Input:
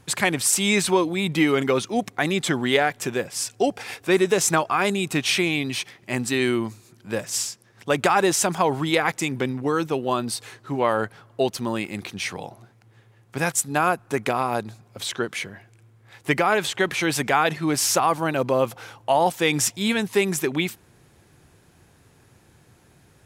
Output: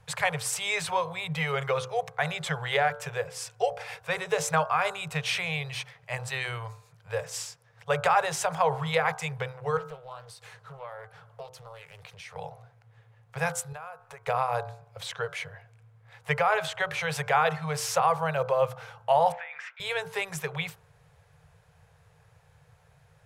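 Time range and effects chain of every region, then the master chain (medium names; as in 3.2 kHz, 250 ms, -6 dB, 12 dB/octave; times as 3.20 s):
9.77–12.36 s: treble shelf 5.7 kHz +5.5 dB + compression 3:1, threshold -38 dBFS + loudspeaker Doppler distortion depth 0.46 ms
13.72–14.27 s: peaking EQ 140 Hz -8.5 dB 2.2 oct + compression 5:1, threshold -35 dBFS + companded quantiser 8-bit
19.32–19.80 s: Butterworth band-pass 1.8 kHz, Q 1.7 + compressor with a negative ratio -34 dBFS
whole clip: Chebyshev band-stop 160–450 Hz, order 4; treble shelf 3.5 kHz -10 dB; de-hum 64.12 Hz, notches 25; trim -1.5 dB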